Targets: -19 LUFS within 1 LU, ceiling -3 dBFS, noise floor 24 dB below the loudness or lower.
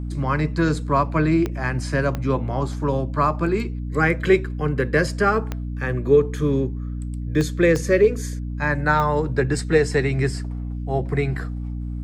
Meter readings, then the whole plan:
clicks 6; hum 60 Hz; harmonics up to 300 Hz; hum level -26 dBFS; loudness -22.0 LUFS; peak -4.5 dBFS; loudness target -19.0 LUFS
-> de-click; notches 60/120/180/240/300 Hz; gain +3 dB; limiter -3 dBFS

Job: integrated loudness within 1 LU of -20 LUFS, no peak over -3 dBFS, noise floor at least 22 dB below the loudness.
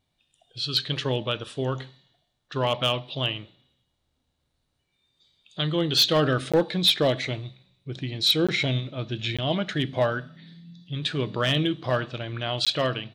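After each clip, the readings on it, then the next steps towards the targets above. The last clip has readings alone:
clipped 0.1%; flat tops at -13.5 dBFS; dropouts 4; longest dropout 16 ms; loudness -25.0 LUFS; peak -13.5 dBFS; loudness target -20.0 LUFS
-> clip repair -13.5 dBFS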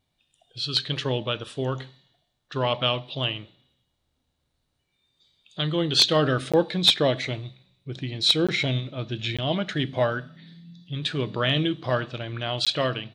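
clipped 0.0%; dropouts 4; longest dropout 16 ms
-> interpolate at 6.52/8.47/9.37/12.65, 16 ms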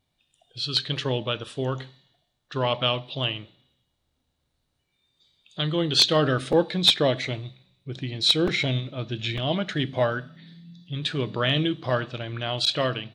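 dropouts 0; loudness -24.5 LUFS; peak -4.5 dBFS; loudness target -20.0 LUFS
-> gain +4.5 dB; limiter -3 dBFS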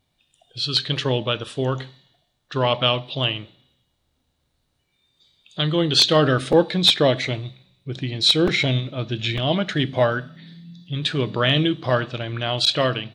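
loudness -20.5 LUFS; peak -3.0 dBFS; noise floor -71 dBFS

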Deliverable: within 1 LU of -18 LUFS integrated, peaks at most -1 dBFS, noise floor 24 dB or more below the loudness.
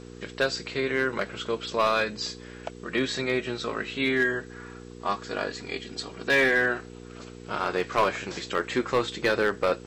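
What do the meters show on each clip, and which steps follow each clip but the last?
clipped 0.6%; flat tops at -15.5 dBFS; hum 60 Hz; harmonics up to 480 Hz; hum level -41 dBFS; loudness -27.0 LUFS; peak -15.5 dBFS; loudness target -18.0 LUFS
-> clip repair -15.5 dBFS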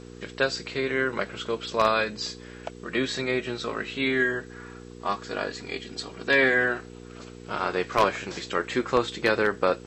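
clipped 0.0%; hum 60 Hz; harmonics up to 480 Hz; hum level -41 dBFS
-> de-hum 60 Hz, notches 8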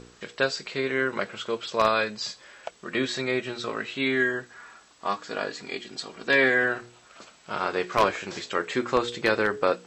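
hum none; loudness -26.5 LUFS; peak -6.5 dBFS; loudness target -18.0 LUFS
-> gain +8.5 dB; limiter -1 dBFS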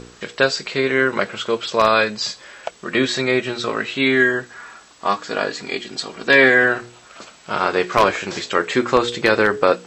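loudness -18.5 LUFS; peak -1.0 dBFS; noise floor -47 dBFS

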